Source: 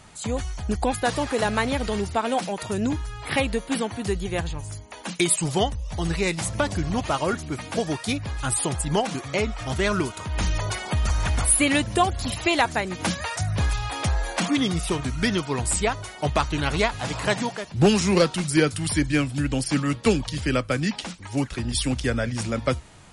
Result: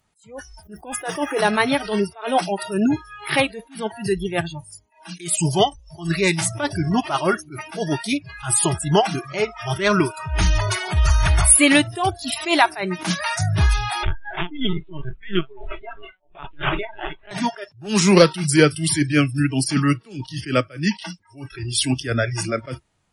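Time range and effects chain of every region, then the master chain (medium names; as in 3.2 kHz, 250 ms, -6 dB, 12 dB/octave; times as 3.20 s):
0.63–1.40 s: peaking EQ 4.3 kHz -11.5 dB 0.27 oct + word length cut 10-bit, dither none
14.03–17.31 s: de-hum 209.2 Hz, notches 33 + tremolo 3 Hz, depth 85% + LPC vocoder at 8 kHz pitch kept
whole clip: spectral noise reduction 27 dB; attacks held to a fixed rise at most 160 dB/s; trim +7 dB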